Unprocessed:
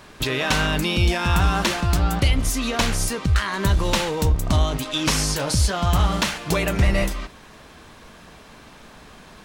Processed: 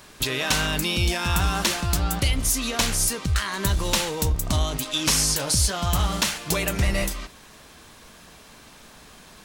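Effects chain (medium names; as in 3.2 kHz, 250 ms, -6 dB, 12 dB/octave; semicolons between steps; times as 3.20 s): treble shelf 4.4 kHz +11.5 dB; trim -4.5 dB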